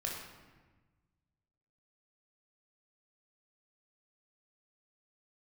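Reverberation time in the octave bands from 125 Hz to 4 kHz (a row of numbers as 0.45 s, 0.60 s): 2.1 s, 1.7 s, 1.3 s, 1.3 s, 1.2 s, 0.90 s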